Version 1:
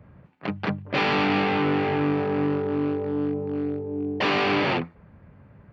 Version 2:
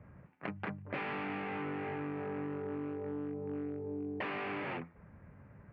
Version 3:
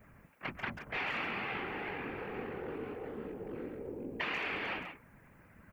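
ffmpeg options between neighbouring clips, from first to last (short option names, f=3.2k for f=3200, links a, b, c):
-af "highshelf=f=3.2k:t=q:w=1.5:g=-13.5,acompressor=threshold=-31dB:ratio=6,volume=-5.5dB"
-filter_complex "[0:a]crystalizer=i=9.5:c=0,asplit=2[a][b];[b]adelay=140,highpass=300,lowpass=3.4k,asoftclip=type=hard:threshold=-26dB,volume=-7dB[c];[a][c]amix=inputs=2:normalize=0,afftfilt=real='hypot(re,im)*cos(2*PI*random(0))':imag='hypot(re,im)*sin(2*PI*random(1))':win_size=512:overlap=0.75,volume=1dB"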